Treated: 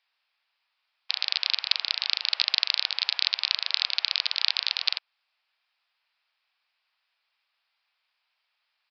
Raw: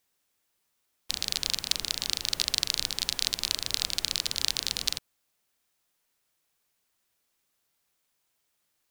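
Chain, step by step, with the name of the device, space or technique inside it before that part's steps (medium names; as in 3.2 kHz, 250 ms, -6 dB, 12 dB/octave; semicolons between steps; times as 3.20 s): musical greeting card (resampled via 11.025 kHz; high-pass 760 Hz 24 dB/octave; peaking EQ 2.5 kHz +5 dB 0.33 oct); trim +4 dB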